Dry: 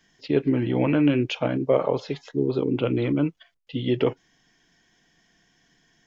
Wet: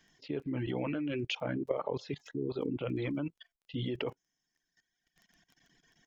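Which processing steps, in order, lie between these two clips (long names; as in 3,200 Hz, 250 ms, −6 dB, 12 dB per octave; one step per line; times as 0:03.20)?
reverb reduction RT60 1.5 s
surface crackle 12 per second −46 dBFS
output level in coarse steps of 17 dB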